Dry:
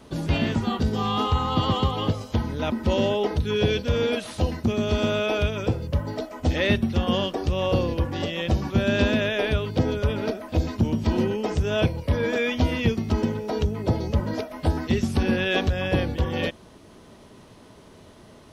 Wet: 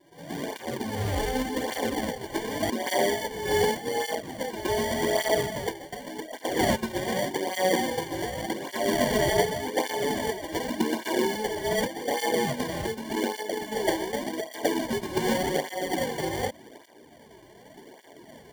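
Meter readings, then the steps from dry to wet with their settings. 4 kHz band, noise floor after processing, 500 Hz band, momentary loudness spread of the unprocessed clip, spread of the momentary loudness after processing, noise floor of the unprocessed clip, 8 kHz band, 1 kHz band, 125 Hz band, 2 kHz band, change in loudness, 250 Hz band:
−2.5 dB, −51 dBFS, −1.5 dB, 5 LU, 8 LU, −49 dBFS, +9.5 dB, +1.0 dB, −13.5 dB, −1.5 dB, −3.5 dB, −5.5 dB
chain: fade in at the beginning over 1.36 s
high-pass filter 280 Hz 24 dB per octave
in parallel at −1 dB: downward compressor, threshold −32 dBFS, peak gain reduction 12 dB
on the sum: sample-and-hold tremolo
decimation without filtering 34×
on a send: backwards echo 117 ms −9.5 dB
on the sum: through-zero flanger with one copy inverted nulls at 0.86 Hz, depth 4.5 ms
level +2 dB

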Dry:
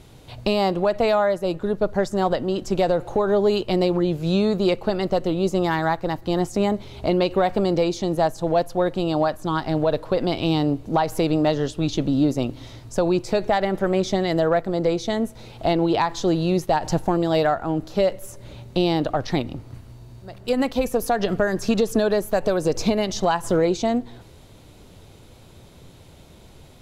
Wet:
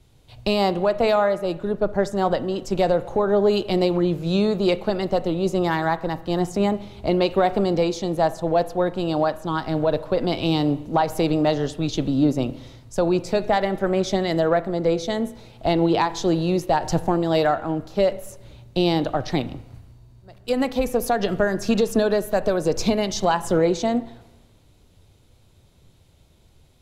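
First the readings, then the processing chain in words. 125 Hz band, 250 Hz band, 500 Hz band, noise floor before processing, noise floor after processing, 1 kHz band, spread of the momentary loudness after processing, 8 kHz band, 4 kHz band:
−0.5 dB, 0.0 dB, 0.0 dB, −47 dBFS, −55 dBFS, +0.5 dB, 6 LU, +0.5 dB, +0.5 dB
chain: spring reverb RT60 1.1 s, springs 30/34 ms, chirp 50 ms, DRR 14.5 dB
multiband upward and downward expander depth 40%

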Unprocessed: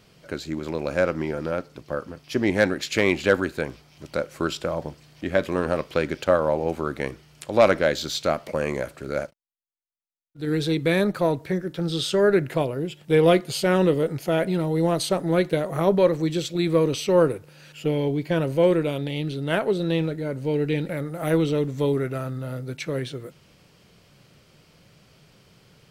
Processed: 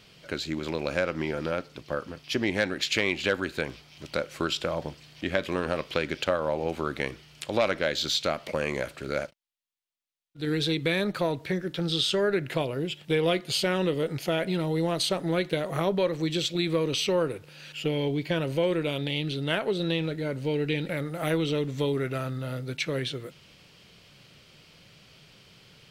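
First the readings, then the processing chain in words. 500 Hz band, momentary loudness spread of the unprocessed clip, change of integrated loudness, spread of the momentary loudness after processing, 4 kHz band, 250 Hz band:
−6.0 dB, 12 LU, −4.5 dB, 9 LU, +3.0 dB, −5.0 dB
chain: parametric band 3,200 Hz +8.5 dB 1.6 octaves
downward compressor 2.5 to 1, threshold −22 dBFS, peak gain reduction 8.5 dB
level −2 dB

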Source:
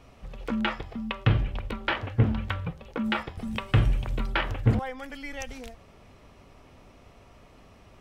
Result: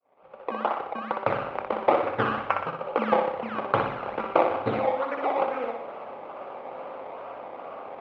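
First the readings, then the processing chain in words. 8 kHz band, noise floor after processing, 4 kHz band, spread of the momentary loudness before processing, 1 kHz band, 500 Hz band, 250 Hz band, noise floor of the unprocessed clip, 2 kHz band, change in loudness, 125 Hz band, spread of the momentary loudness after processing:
can't be measured, −46 dBFS, −7.0 dB, 13 LU, +10.5 dB, +12.0 dB, −3.0 dB, −54 dBFS, −0.5 dB, +1.5 dB, −15.0 dB, 15 LU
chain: fade in at the beginning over 1.86 s
dynamic equaliser 750 Hz, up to −8 dB, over −45 dBFS, Q 0.9
in parallel at +1 dB: downward compressor, threshold −43 dBFS, peak gain reduction 24 dB
on the sum: sample-and-hold swept by an LFO 22×, swing 100% 2.3 Hz
loudspeaker in its box 470–2,400 Hz, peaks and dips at 540 Hz +8 dB, 810 Hz +7 dB, 1,200 Hz +5 dB, 1,800 Hz −8 dB
on a send: flutter between parallel walls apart 10.4 metres, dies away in 0.68 s
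on the sum: level +8 dB

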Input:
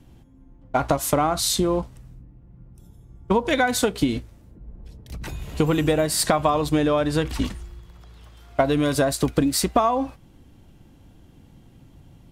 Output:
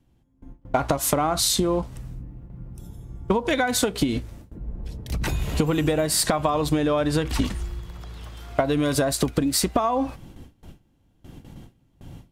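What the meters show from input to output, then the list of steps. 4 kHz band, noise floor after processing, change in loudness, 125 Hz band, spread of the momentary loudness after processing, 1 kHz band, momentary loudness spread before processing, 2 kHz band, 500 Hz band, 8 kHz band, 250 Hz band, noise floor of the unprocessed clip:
+1.0 dB, −63 dBFS, −1.0 dB, 0.0 dB, 19 LU, −2.5 dB, 13 LU, −1.5 dB, −1.5 dB, +1.5 dB, −1.0 dB, −52 dBFS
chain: noise gate with hold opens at −40 dBFS
downward compressor, threshold −27 dBFS, peak gain reduction 12.5 dB
level +8 dB

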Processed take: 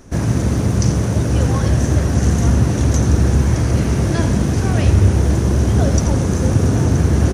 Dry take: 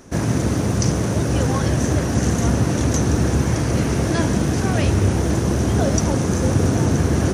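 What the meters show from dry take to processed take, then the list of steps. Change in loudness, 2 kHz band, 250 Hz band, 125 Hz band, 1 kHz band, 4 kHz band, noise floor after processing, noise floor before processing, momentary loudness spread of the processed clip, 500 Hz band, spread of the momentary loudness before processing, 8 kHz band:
+3.5 dB, −0.5 dB, +1.0 dB, +4.5 dB, −0.5 dB, −0.5 dB, −19 dBFS, −22 dBFS, 3 LU, 0.0 dB, 2 LU, −0.5 dB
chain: low-shelf EQ 95 Hz +11.5 dB
single-tap delay 85 ms −10 dB
level −1 dB

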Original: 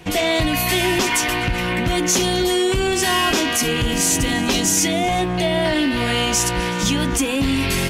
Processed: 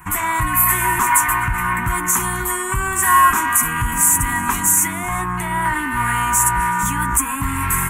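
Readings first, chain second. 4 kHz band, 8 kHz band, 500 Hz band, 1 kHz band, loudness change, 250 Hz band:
−14.5 dB, +3.5 dB, −13.5 dB, +7.5 dB, +1.5 dB, −7.5 dB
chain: drawn EQ curve 110 Hz 0 dB, 380 Hz −13 dB, 560 Hz −28 dB, 1,000 Hz +12 dB, 1,900 Hz +2 dB, 3,300 Hz −17 dB, 4,900 Hz −24 dB, 7,600 Hz +5 dB, 14,000 Hz +11 dB
level +1 dB

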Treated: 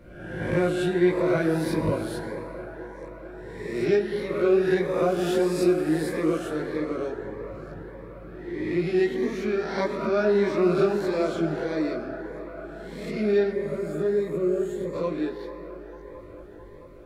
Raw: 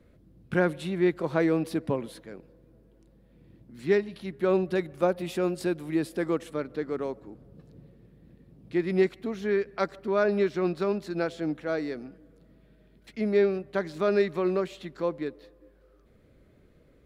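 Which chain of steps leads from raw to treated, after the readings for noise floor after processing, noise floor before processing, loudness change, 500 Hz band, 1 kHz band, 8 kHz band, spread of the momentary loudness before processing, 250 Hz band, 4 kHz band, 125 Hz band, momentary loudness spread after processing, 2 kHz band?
−44 dBFS, −60 dBFS, +3.0 dB, +3.5 dB, +2.5 dB, can't be measured, 11 LU, +3.5 dB, +4.0 dB, +3.5 dB, 18 LU, +2.0 dB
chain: peak hold with a rise ahead of every peak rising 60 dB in 0.97 s
mains-hum notches 60/120 Hz
in parallel at −2 dB: downward compressor, threshold −37 dBFS, peak gain reduction 18.5 dB
on the sum: gain on a spectral selection 0:13.51–0:14.94, 560–6,500 Hz −14 dB
multi-voice chorus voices 6, 0.77 Hz, delay 18 ms, depth 1.7 ms
on a send: delay with a band-pass on its return 222 ms, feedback 85%, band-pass 930 Hz, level −11 dB
on the sum: dense smooth reverb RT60 3.6 s, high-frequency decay 0.45×, DRR 8 dB
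phaser whose notches keep moving one way rising 1.6 Hz
level +2.5 dB

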